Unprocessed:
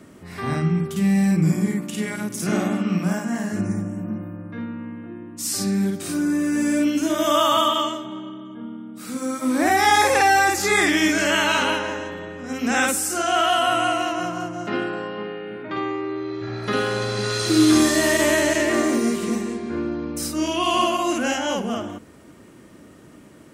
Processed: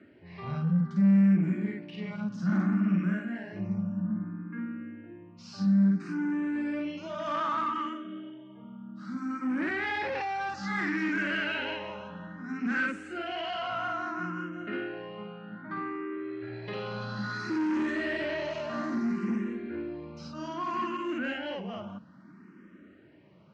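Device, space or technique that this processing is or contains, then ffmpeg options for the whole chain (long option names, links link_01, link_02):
barber-pole phaser into a guitar amplifier: -filter_complex "[0:a]asplit=2[link_01][link_02];[link_02]afreqshift=0.61[link_03];[link_01][link_03]amix=inputs=2:normalize=1,asoftclip=type=tanh:threshold=-20dB,highpass=110,equalizer=frequency=190:width_type=q:width=4:gain=10,equalizer=frequency=470:width_type=q:width=4:gain=-6,equalizer=frequency=740:width_type=q:width=4:gain=-5,equalizer=frequency=1500:width_type=q:width=4:gain=5,equalizer=frequency=3500:width_type=q:width=4:gain=-9,lowpass=frequency=4000:width=0.5412,lowpass=frequency=4000:width=1.3066,volume=-6dB"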